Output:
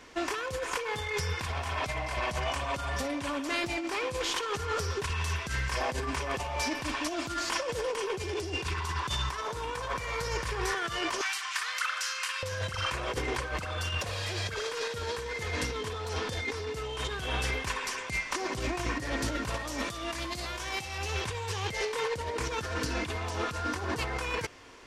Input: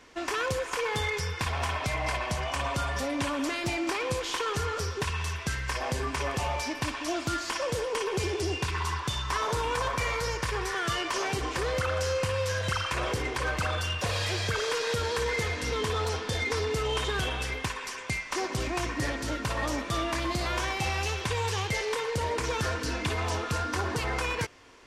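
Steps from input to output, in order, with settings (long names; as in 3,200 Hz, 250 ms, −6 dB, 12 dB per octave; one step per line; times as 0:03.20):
0:11.21–0:12.43: high-pass filter 1,200 Hz 24 dB per octave
0:19.54–0:20.98: high-shelf EQ 3,000 Hz +7.5 dB
compressor whose output falls as the input rises −32 dBFS, ratio −0.5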